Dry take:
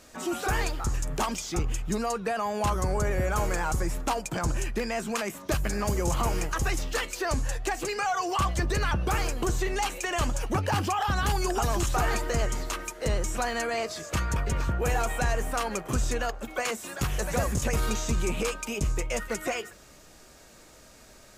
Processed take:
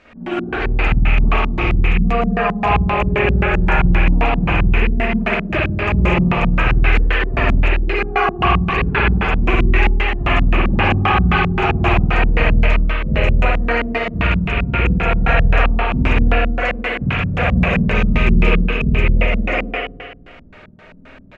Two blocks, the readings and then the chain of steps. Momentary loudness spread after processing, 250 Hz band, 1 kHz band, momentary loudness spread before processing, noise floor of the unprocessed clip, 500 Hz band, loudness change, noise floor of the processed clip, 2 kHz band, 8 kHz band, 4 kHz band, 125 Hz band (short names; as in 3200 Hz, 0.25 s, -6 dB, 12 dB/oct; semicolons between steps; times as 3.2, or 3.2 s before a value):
4 LU, +14.0 dB, +9.5 dB, 4 LU, -52 dBFS, +9.0 dB, +12.5 dB, -41 dBFS, +14.5 dB, under -15 dB, +8.5 dB, +13.5 dB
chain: rattling part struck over -34 dBFS, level -22 dBFS; step gate "xxxx.xxxxxx." 125 bpm -12 dB; loudspeakers at several distances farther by 39 m -9 dB, 60 m -6 dB; spring tank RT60 1.4 s, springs 51 ms, chirp 30 ms, DRR -8.5 dB; LFO low-pass square 3.8 Hz 200–2400 Hz; gain +1 dB